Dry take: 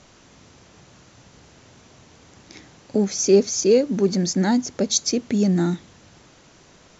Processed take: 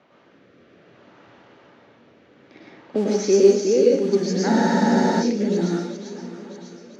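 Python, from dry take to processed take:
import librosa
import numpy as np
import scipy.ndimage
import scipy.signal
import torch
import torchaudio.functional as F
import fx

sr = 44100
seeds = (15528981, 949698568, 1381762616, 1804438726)

p1 = fx.block_float(x, sr, bits=5)
p2 = fx.env_lowpass(p1, sr, base_hz=2600.0, full_db=-14.5)
p3 = scipy.signal.sosfilt(scipy.signal.butter(2, 240.0, 'highpass', fs=sr, output='sos'), p2)
p4 = fx.high_shelf(p3, sr, hz=6800.0, db=-8.0)
p5 = fx.rotary(p4, sr, hz=0.6)
p6 = fx.air_absorb(p5, sr, metres=65.0)
p7 = p6 + fx.echo_swing(p6, sr, ms=992, ratio=1.5, feedback_pct=34, wet_db=-15, dry=0)
p8 = fx.rev_plate(p7, sr, seeds[0], rt60_s=0.57, hf_ratio=1.0, predelay_ms=90, drr_db=-3.5)
y = fx.spec_freeze(p8, sr, seeds[1], at_s=4.5, hold_s=0.72)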